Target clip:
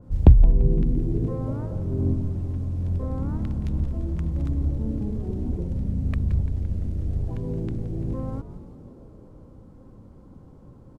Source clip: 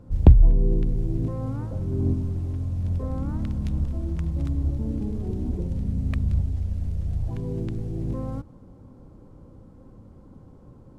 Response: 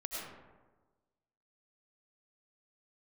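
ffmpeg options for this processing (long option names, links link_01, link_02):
-filter_complex "[0:a]asplit=8[link_01][link_02][link_03][link_04][link_05][link_06][link_07][link_08];[link_02]adelay=171,afreqshift=-95,volume=-13dB[link_09];[link_03]adelay=342,afreqshift=-190,volume=-16.9dB[link_10];[link_04]adelay=513,afreqshift=-285,volume=-20.8dB[link_11];[link_05]adelay=684,afreqshift=-380,volume=-24.6dB[link_12];[link_06]adelay=855,afreqshift=-475,volume=-28.5dB[link_13];[link_07]adelay=1026,afreqshift=-570,volume=-32.4dB[link_14];[link_08]adelay=1197,afreqshift=-665,volume=-36.3dB[link_15];[link_01][link_09][link_10][link_11][link_12][link_13][link_14][link_15]amix=inputs=8:normalize=0,adynamicequalizer=threshold=0.00282:dfrequency=2200:dqfactor=0.7:tfrequency=2200:tqfactor=0.7:attack=5:release=100:ratio=0.375:range=2:mode=cutabove:tftype=highshelf"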